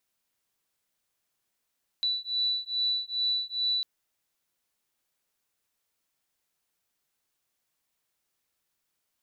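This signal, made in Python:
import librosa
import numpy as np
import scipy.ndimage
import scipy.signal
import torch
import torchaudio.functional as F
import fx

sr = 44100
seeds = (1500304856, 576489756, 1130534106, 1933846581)

y = fx.two_tone_beats(sr, length_s=1.8, hz=3960.0, beat_hz=2.4, level_db=-29.5)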